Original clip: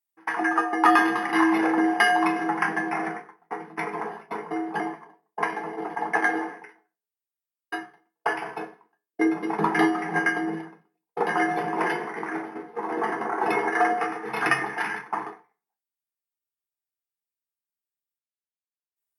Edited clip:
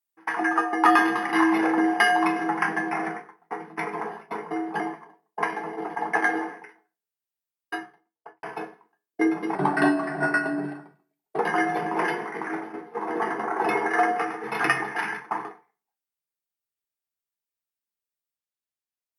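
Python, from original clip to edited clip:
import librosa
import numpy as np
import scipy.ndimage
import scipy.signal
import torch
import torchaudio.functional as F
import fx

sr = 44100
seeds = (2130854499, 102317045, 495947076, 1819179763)

y = fx.studio_fade_out(x, sr, start_s=7.75, length_s=0.68)
y = fx.edit(y, sr, fx.speed_span(start_s=9.55, length_s=1.65, speed=0.9), tone=tone)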